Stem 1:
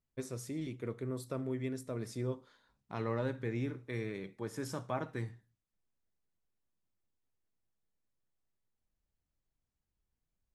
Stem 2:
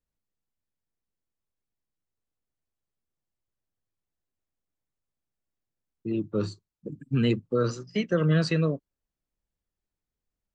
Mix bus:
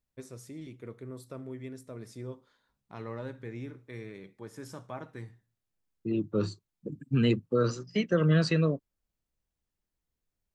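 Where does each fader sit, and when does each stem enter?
−4.0, −1.0 decibels; 0.00, 0.00 seconds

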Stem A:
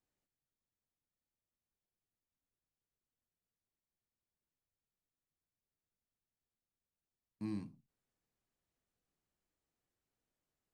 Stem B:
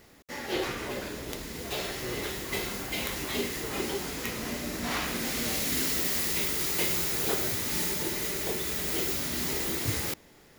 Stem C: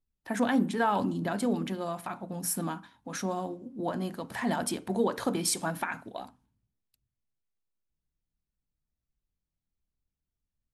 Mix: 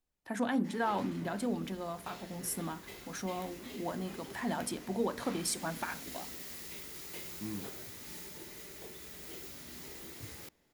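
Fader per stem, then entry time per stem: −0.5, −16.5, −5.5 decibels; 0.00, 0.35, 0.00 seconds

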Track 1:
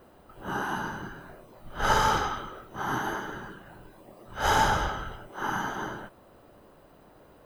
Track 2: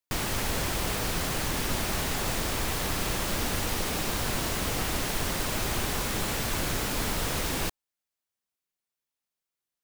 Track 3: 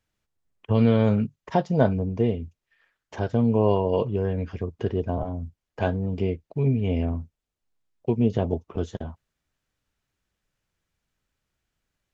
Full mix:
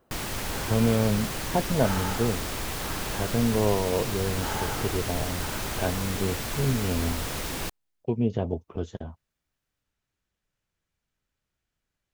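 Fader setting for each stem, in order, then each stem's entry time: −11.0, −2.5, −3.5 decibels; 0.00, 0.00, 0.00 seconds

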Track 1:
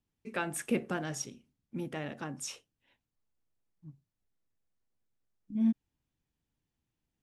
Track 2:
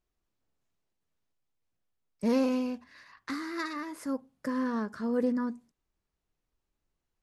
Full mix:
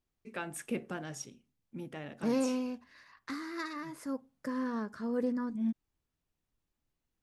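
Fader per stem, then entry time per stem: −5.0, −4.0 decibels; 0.00, 0.00 seconds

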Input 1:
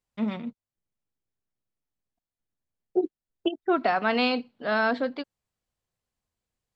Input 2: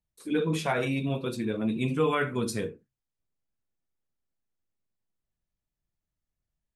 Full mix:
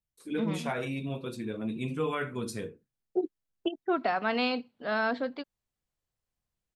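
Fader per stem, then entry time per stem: −4.5, −5.5 decibels; 0.20, 0.00 seconds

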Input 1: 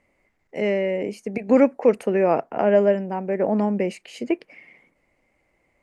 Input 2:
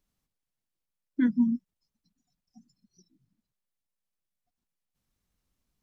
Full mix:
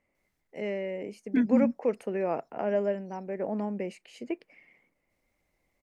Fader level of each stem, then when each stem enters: −10.5, −0.5 decibels; 0.00, 0.15 seconds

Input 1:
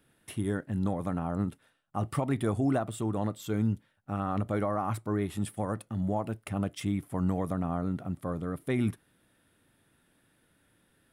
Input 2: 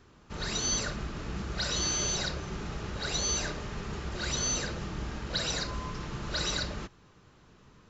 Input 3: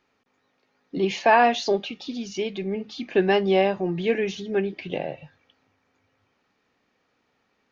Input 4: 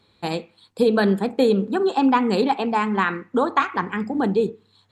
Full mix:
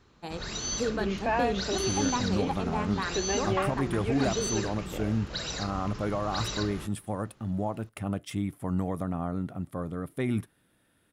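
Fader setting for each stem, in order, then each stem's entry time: −0.5, −3.0, −11.0, −12.5 decibels; 1.50, 0.00, 0.00, 0.00 seconds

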